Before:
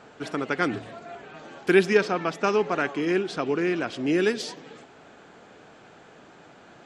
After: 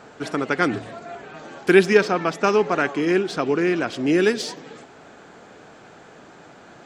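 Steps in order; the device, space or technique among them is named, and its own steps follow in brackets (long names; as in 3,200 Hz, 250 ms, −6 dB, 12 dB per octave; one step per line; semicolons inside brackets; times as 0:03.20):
exciter from parts (in parallel at −10 dB: high-pass filter 2,700 Hz 24 dB per octave + soft clipping −39 dBFS, distortion −6 dB)
on the sum: level +4.5 dB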